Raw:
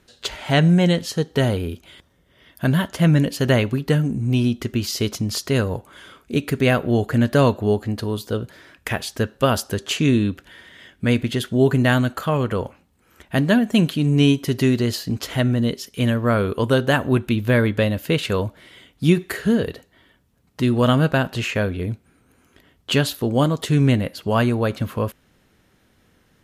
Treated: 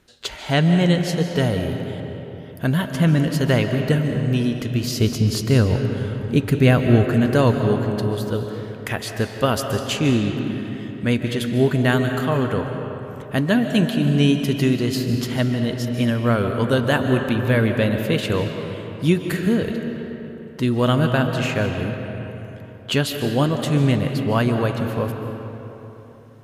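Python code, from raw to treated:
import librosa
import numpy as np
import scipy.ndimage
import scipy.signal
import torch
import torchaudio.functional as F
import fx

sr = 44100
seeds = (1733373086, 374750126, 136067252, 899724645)

y = fx.low_shelf(x, sr, hz=250.0, db=9.0, at=(4.92, 7.13))
y = fx.rev_freeverb(y, sr, rt60_s=3.6, hf_ratio=0.55, predelay_ms=105, drr_db=5.0)
y = F.gain(torch.from_numpy(y), -1.5).numpy()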